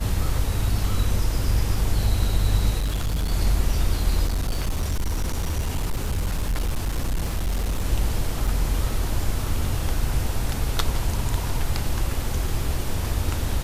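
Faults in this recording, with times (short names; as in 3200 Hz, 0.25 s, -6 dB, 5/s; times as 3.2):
2.79–3.31 clipped -20.5 dBFS
4.26–7.84 clipped -20 dBFS
8.47–8.48 gap 5.2 ms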